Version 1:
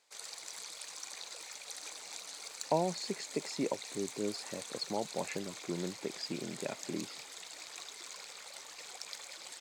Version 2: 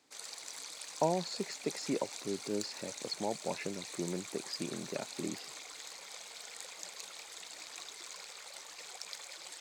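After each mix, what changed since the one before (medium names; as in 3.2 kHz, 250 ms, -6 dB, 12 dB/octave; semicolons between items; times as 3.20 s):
speech: entry -1.70 s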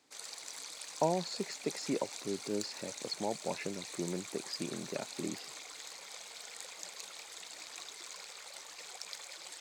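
no change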